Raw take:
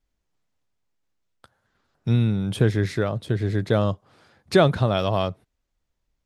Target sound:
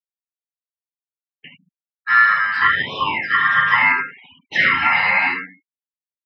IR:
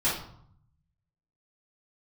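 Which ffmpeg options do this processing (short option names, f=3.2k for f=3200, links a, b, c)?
-filter_complex "[0:a]aemphasis=mode=production:type=riaa,aecho=1:1:50|79:0.376|0.376,acrossover=split=2700[a][b];[b]acompressor=threshold=-42dB:ratio=4:attack=1:release=60[c];[a][c]amix=inputs=2:normalize=0,aeval=exprs='0.2*(abs(mod(val(0)/0.2+3,4)-2)-1)':c=same,acompressor=threshold=-26dB:ratio=5,aeval=exprs='val(0)*sin(2*PI*1500*n/s)':c=same,highpass=130,lowpass=3.9k,equalizer=f=1.8k:w=0.69:g=10[d];[1:a]atrim=start_sample=2205,asetrate=70560,aresample=44100[e];[d][e]afir=irnorm=-1:irlink=0,afftfilt=real='re*gte(hypot(re,im),0.01)':imag='im*gte(hypot(re,im),0.01)':win_size=1024:overlap=0.75,afftfilt=real='re*(1-between(b*sr/1024,320*pow(1700/320,0.5+0.5*sin(2*PI*0.74*pts/sr))/1.41,320*pow(1700/320,0.5+0.5*sin(2*PI*0.74*pts/sr))*1.41))':imag='im*(1-between(b*sr/1024,320*pow(1700/320,0.5+0.5*sin(2*PI*0.74*pts/sr))/1.41,320*pow(1700/320,0.5+0.5*sin(2*PI*0.74*pts/sr))*1.41))':win_size=1024:overlap=0.75,volume=2.5dB"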